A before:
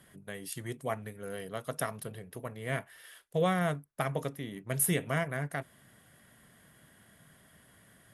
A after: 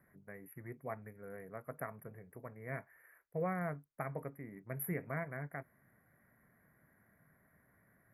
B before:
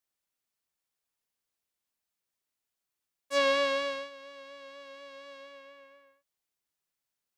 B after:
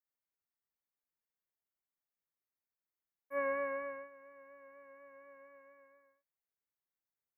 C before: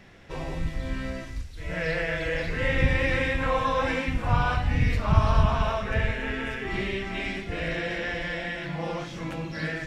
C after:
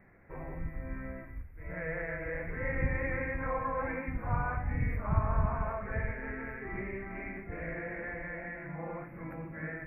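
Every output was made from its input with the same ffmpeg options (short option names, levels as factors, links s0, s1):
-af "asuperstop=centerf=5500:order=20:qfactor=0.61,volume=0.376"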